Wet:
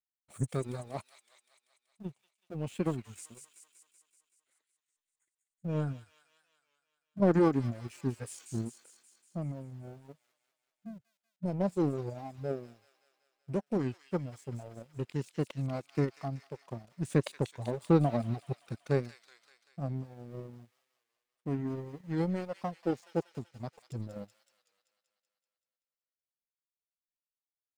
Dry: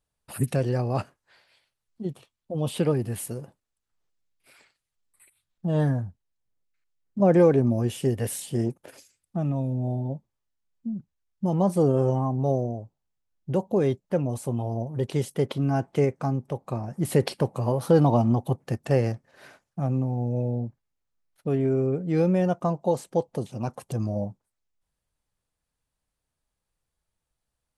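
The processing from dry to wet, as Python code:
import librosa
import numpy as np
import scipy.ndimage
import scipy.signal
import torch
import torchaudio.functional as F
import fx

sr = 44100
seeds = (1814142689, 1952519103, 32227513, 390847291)

p1 = fx.dereverb_blind(x, sr, rt60_s=1.9)
p2 = np.where(np.abs(p1) >= 10.0 ** (-37.0 / 20.0), p1, 0.0)
p3 = p1 + (p2 * 10.0 ** (-8.5 / 20.0))
p4 = fx.power_curve(p3, sr, exponent=1.4)
p5 = fx.formant_shift(p4, sr, semitones=-3)
p6 = p5 + fx.echo_wet_highpass(p5, sr, ms=190, feedback_pct=63, hz=2700.0, wet_db=-5, dry=0)
p7 = fx.record_warp(p6, sr, rpm=33.33, depth_cents=100.0)
y = p7 * 10.0 ** (-6.0 / 20.0)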